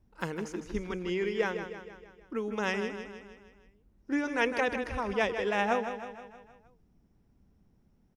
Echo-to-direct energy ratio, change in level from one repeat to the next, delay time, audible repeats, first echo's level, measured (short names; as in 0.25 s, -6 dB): -7.5 dB, -5.5 dB, 0.157 s, 5, -9.0 dB